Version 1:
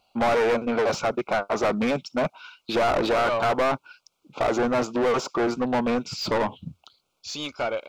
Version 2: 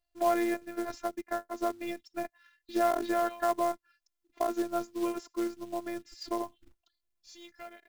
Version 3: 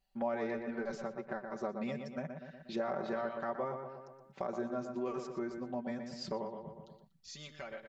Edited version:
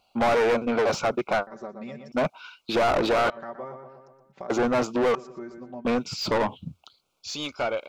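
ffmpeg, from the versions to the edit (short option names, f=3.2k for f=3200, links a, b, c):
-filter_complex "[2:a]asplit=3[a][b][c];[0:a]asplit=4[d][e][f][g];[d]atrim=end=1.472[h];[a]atrim=start=1.468:end=2.122[i];[e]atrim=start=2.118:end=3.302[j];[b]atrim=start=3.298:end=4.502[k];[f]atrim=start=4.498:end=5.152[l];[c]atrim=start=5.148:end=5.852[m];[g]atrim=start=5.848[n];[h][i]acrossfade=d=0.004:c1=hsin:c2=hsin[o];[o][j]acrossfade=d=0.004:c1=hsin:c2=hsin[p];[p][k]acrossfade=d=0.004:c1=hsin:c2=hsin[q];[q][l]acrossfade=d=0.004:c1=hsin:c2=hsin[r];[r][m]acrossfade=d=0.004:c1=hsin:c2=hsin[s];[s][n]acrossfade=d=0.004:c1=hsin:c2=hsin"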